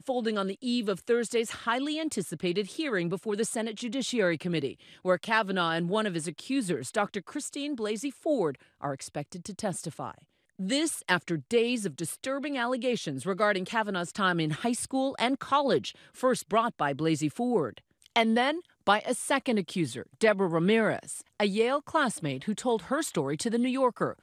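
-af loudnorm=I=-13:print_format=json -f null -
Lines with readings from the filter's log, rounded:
"input_i" : "-29.2",
"input_tp" : "-9.1",
"input_lra" : "4.1",
"input_thresh" : "-39.3",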